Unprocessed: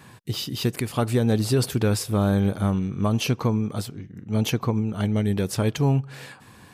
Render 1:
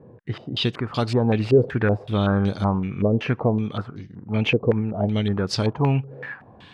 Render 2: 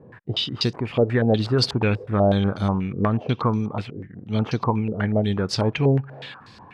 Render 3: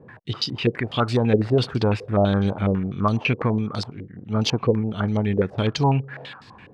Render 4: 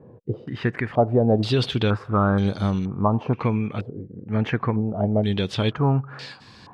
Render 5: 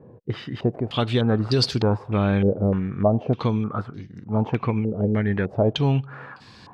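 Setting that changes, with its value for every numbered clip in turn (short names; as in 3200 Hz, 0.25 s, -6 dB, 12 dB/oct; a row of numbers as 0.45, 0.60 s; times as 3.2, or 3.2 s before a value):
stepped low-pass, rate: 5.3, 8.2, 12, 2.1, 3.3 Hz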